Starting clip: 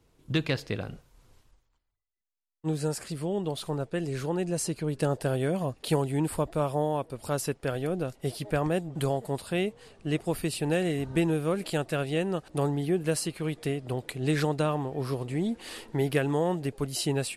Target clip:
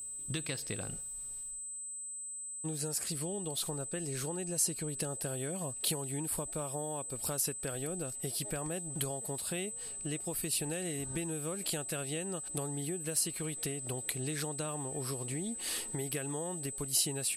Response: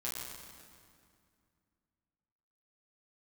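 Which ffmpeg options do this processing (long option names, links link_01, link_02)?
-af "acompressor=threshold=-33dB:ratio=6,aeval=exprs='val(0)+0.00355*sin(2*PI*8100*n/s)':channel_layout=same,aemphasis=mode=production:type=75kf,volume=-3dB"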